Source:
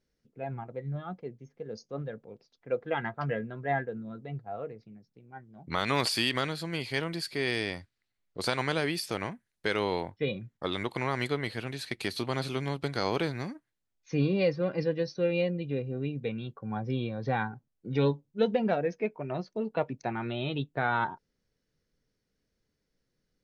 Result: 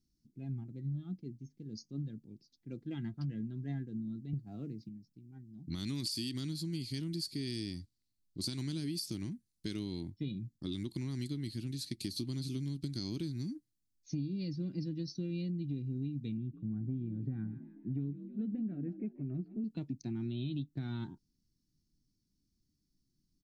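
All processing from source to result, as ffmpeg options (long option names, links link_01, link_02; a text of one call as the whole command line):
ffmpeg -i in.wav -filter_complex "[0:a]asettb=1/sr,asplit=3[link_01][link_02][link_03];[link_01]atrim=end=4.334[link_04];[link_02]atrim=start=4.33:end=4.89,asetpts=PTS-STARTPTS,afade=type=in:duration=0.004:curve=qsin,afade=type=out:start_time=0.556:duration=0.004:curve=qsin,acontrast=56,highpass=120[link_05];[link_03]atrim=start=4.886[link_06];[link_04][link_05]acrossfade=duration=0.004:curve1=hsin:curve2=qsin[link_07];[link_07][link_06]acrossfade=duration=0.004:curve1=qsin:curve2=hsin,asettb=1/sr,asplit=3[link_08][link_09][link_10];[link_08]atrim=end=16.374[link_11];[link_09]atrim=start=16.37:end=19.64,asetpts=PTS-STARTPTS,afade=type=in:duration=0.004:curve=qsin,afade=type=out:start_time=3.266:duration=0.004:curve=qsin,lowpass=frequency=1800:width=0.5412,lowpass=frequency=1800:width=1.3066,equalizer=frequency=910:width_type=o:width=0.49:gain=-11.5,asplit=6[link_12][link_13][link_14][link_15][link_16][link_17];[link_13]adelay=159,afreqshift=50,volume=-16dB[link_18];[link_14]adelay=318,afreqshift=100,volume=-21.8dB[link_19];[link_15]adelay=477,afreqshift=150,volume=-27.7dB[link_20];[link_16]adelay=636,afreqshift=200,volume=-33.5dB[link_21];[link_17]adelay=795,afreqshift=250,volume=-39.4dB[link_22];[link_12][link_18][link_19][link_20][link_21][link_22]amix=inputs=6:normalize=0,atrim=end_sample=144207[link_23];[link_10]atrim=start=19.636[link_24];[link_11][link_23]acrossfade=duration=0.004:curve1=hsin:curve2=qsin[link_25];[link_25][link_24]acrossfade=duration=0.004:curve1=qsin:curve2=hsin,firequalizer=gain_entry='entry(320,0);entry(480,-28);entry(1300,-27);entry(4500,-1)':delay=0.05:min_phase=1,acompressor=threshold=-35dB:ratio=10,volume=1.5dB" out.wav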